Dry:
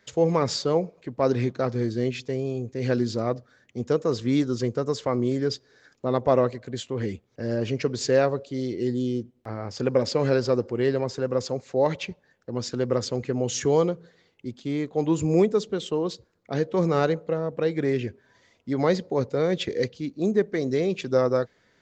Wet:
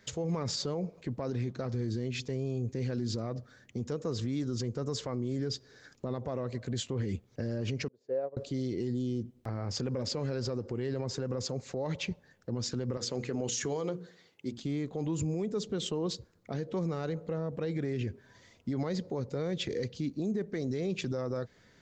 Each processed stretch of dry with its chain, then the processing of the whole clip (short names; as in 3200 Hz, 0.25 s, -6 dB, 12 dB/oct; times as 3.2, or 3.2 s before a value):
7.88–8.37 band-pass 550 Hz, Q 2.4 + upward expander 2.5:1, over -33 dBFS
12.97–14.58 HPF 340 Hz 6 dB/oct + notches 60/120/180/240/300/360/420/480 Hz + compressor 2:1, threshold -29 dBFS
whole clip: tone controls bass +7 dB, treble +4 dB; compressor, threshold -24 dBFS; limiter -25 dBFS